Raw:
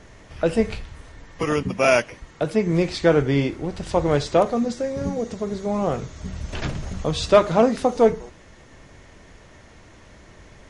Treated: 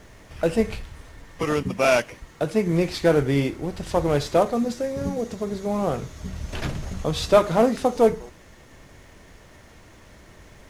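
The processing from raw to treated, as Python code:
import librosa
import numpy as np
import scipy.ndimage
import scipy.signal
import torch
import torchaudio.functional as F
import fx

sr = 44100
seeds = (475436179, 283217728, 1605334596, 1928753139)

y = fx.cvsd(x, sr, bps=64000)
y = fx.quant_dither(y, sr, seeds[0], bits=12, dither='triangular')
y = F.gain(torch.from_numpy(y), -1.0).numpy()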